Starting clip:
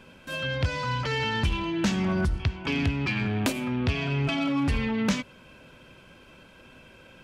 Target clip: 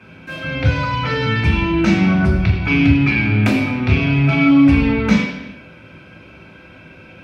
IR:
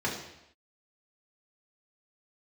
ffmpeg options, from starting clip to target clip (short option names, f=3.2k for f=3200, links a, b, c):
-filter_complex "[0:a]equalizer=f=2.3k:t=o:w=0.25:g=10[a];[1:a]atrim=start_sample=2205,afade=t=out:st=0.38:d=0.01,atrim=end_sample=17199,asetrate=34839,aresample=44100[b];[a][b]afir=irnorm=-1:irlink=0,volume=-2.5dB"